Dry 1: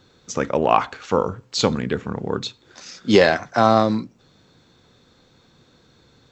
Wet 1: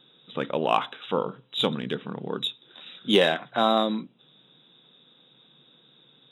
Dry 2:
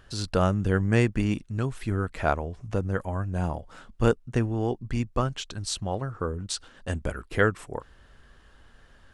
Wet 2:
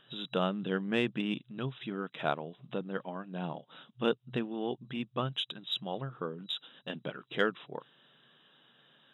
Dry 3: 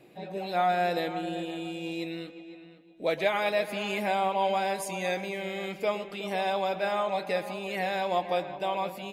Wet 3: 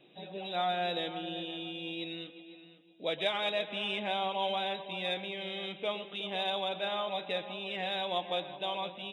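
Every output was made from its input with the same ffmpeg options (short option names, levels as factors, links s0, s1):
-af "afftfilt=real='re*between(b*sr/4096,120,3900)':imag='im*between(b*sr/4096,120,3900)':win_size=4096:overlap=0.75,aexciter=amount=2.6:drive=9.5:freq=3000,volume=0.473"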